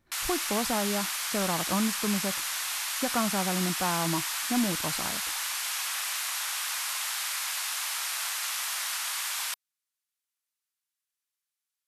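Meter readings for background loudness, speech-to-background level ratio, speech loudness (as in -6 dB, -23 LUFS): -29.5 LUFS, -2.0 dB, -31.5 LUFS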